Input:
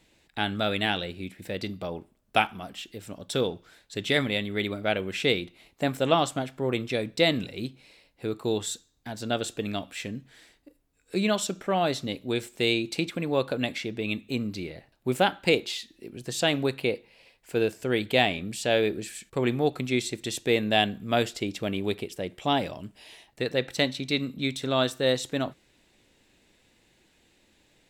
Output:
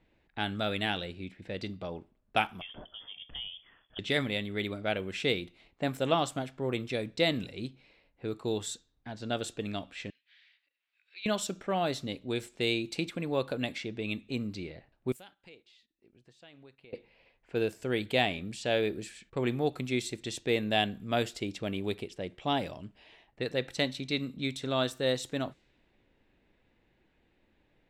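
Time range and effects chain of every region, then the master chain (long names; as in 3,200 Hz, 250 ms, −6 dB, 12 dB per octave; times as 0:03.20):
0:02.61–0:03.99: low-shelf EQ 220 Hz +8.5 dB + downward compressor 3 to 1, threshold −35 dBFS + voice inversion scrambler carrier 3,400 Hz
0:10.10–0:11.26: upward compression, threshold −40 dBFS + flat-topped band-pass 3,300 Hz, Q 1.2
0:15.12–0:16.93: first-order pre-emphasis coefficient 0.8 + downward compressor 2 to 1, threshold −53 dBFS + noise gate −60 dBFS, range −12 dB
whole clip: low-pass that shuts in the quiet parts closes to 2,100 Hz, open at −25 dBFS; low-shelf EQ 60 Hz +6.5 dB; level −5 dB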